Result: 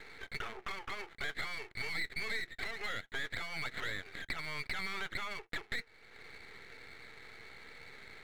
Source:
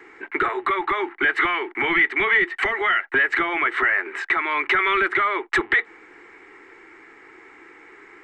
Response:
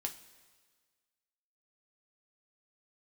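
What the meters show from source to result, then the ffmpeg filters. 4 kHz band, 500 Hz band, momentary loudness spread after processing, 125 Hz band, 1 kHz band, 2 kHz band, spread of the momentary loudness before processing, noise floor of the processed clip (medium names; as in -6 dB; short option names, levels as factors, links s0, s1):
-9.5 dB, -21.5 dB, 14 LU, no reading, -22.5 dB, -19.5 dB, 6 LU, -62 dBFS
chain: -af "highpass=f=450:w=0.5412,highpass=f=450:w=1.3066,equalizer=f=460:t=q:w=4:g=9,equalizer=f=660:t=q:w=4:g=4,equalizer=f=980:t=q:w=4:g=-4,equalizer=f=1500:t=q:w=4:g=4,equalizer=f=2200:t=q:w=4:g=9,lowpass=f=2700:w=0.5412,lowpass=f=2700:w=1.3066,acompressor=threshold=0.01:ratio=2,aeval=exprs='max(val(0),0)':c=same,volume=0.562"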